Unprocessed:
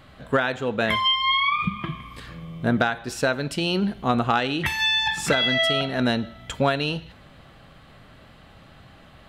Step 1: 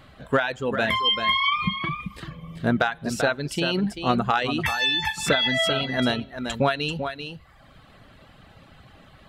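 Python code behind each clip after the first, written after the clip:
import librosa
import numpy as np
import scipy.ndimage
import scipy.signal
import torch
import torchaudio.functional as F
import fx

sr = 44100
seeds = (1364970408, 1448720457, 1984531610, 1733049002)

y = x + 10.0 ** (-7.5 / 20.0) * np.pad(x, (int(389 * sr / 1000.0), 0))[:len(x)]
y = fx.dereverb_blind(y, sr, rt60_s=0.77)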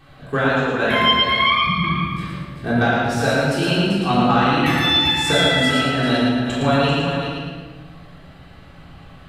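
y = fx.echo_feedback(x, sr, ms=112, feedback_pct=44, wet_db=-3.0)
y = fx.room_shoebox(y, sr, seeds[0], volume_m3=760.0, walls='mixed', distance_m=3.6)
y = F.gain(torch.from_numpy(y), -4.5).numpy()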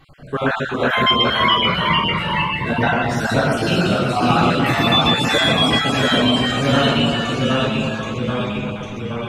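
y = fx.spec_dropout(x, sr, seeds[1], share_pct=32)
y = fx.echo_pitch(y, sr, ms=367, semitones=-1, count=3, db_per_echo=-3.0)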